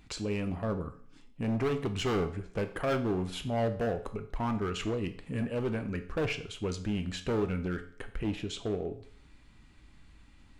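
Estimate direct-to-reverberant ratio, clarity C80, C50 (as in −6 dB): 7.0 dB, 16.0 dB, 12.5 dB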